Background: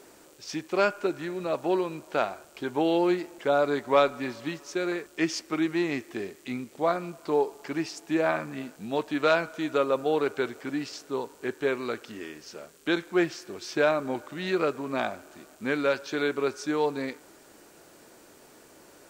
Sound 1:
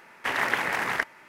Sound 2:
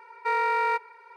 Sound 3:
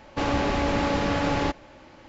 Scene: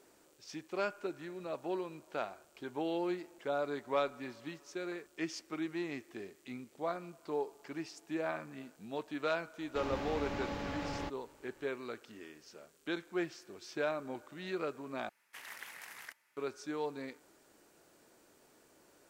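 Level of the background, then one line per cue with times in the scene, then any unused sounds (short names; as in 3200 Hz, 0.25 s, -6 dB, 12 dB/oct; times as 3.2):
background -11.5 dB
9.58 add 3 -15 dB
15.09 replace with 1 -11 dB + pre-emphasis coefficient 0.9
not used: 2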